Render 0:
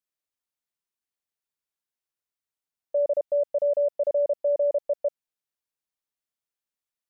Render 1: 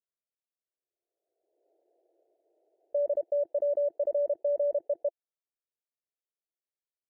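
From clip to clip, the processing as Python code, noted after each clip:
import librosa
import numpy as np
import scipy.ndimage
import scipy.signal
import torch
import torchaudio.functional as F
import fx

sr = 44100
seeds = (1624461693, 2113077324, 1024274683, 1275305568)

y = scipy.signal.sosfilt(scipy.signal.ellip(3, 1.0, 40, [340.0, 680.0], 'bandpass', fs=sr, output='sos'), x)
y = fx.pre_swell(y, sr, db_per_s=36.0)
y = F.gain(torch.from_numpy(y), -3.5).numpy()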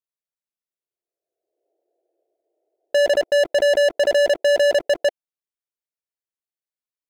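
y = fx.leveller(x, sr, passes=5)
y = F.gain(torch.from_numpy(y), 7.0).numpy()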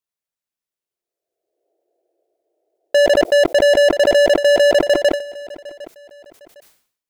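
y = fx.echo_feedback(x, sr, ms=757, feedback_pct=30, wet_db=-20.0)
y = fx.sustainer(y, sr, db_per_s=110.0)
y = F.gain(torch.from_numpy(y), 4.0).numpy()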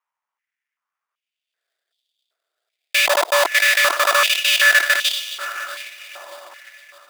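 y = fx.echo_diffused(x, sr, ms=565, feedback_pct=44, wet_db=-12.0)
y = fx.sample_hold(y, sr, seeds[0], rate_hz=4200.0, jitter_pct=20)
y = fx.filter_held_highpass(y, sr, hz=2.6, low_hz=970.0, high_hz=3300.0)
y = F.gain(torch.from_numpy(y), -1.0).numpy()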